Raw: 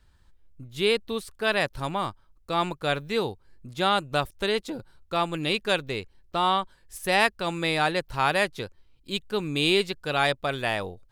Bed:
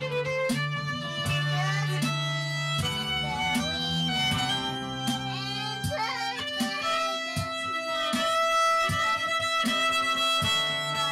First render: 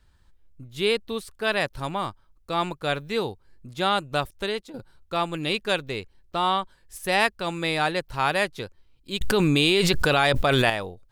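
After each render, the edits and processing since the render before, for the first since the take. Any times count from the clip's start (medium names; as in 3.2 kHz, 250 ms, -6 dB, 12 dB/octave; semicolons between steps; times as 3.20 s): 4.22–4.74 s: fade out equal-power, to -11.5 dB; 9.21–10.70 s: level flattener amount 100%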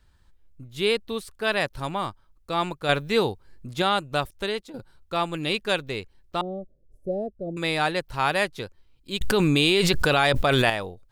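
2.89–3.82 s: gain +4.5 dB; 6.41–7.57 s: elliptic low-pass 620 Hz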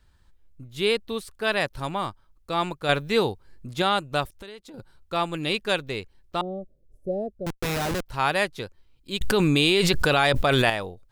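4.34–4.78 s: compression 4:1, threshold -40 dBFS; 7.46–8.06 s: Schmitt trigger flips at -27.5 dBFS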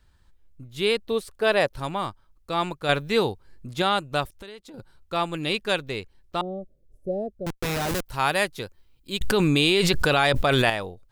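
1.06–1.74 s: peaking EQ 520 Hz +7.5 dB 1.1 oct; 7.87–9.17 s: treble shelf 6.8 kHz -> 12 kHz +9.5 dB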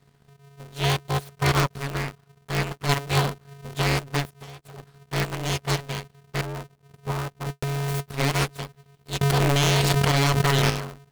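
full-wave rectifier; polarity switched at an audio rate 140 Hz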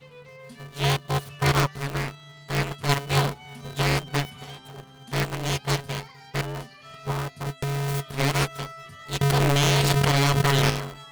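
add bed -18 dB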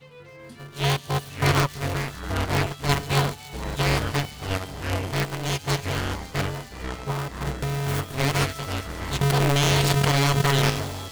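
ever faster or slower copies 174 ms, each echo -7 st, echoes 2, each echo -6 dB; feedback echo behind a high-pass 138 ms, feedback 84%, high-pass 4.4 kHz, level -13.5 dB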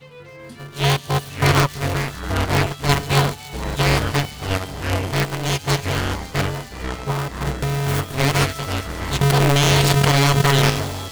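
trim +5 dB; peak limiter -2 dBFS, peak gain reduction 1.5 dB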